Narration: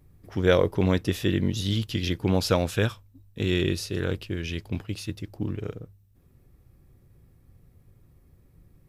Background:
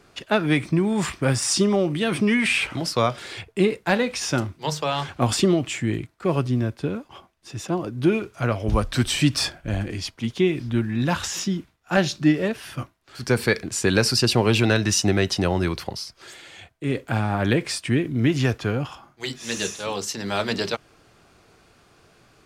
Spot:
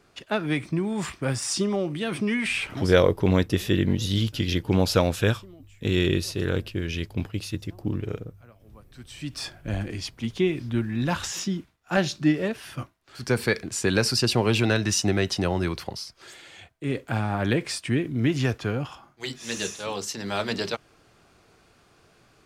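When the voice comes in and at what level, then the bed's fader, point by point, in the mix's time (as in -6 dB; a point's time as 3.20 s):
2.45 s, +2.0 dB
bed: 2.84 s -5.5 dB
3.08 s -29.5 dB
8.82 s -29.5 dB
9.64 s -3 dB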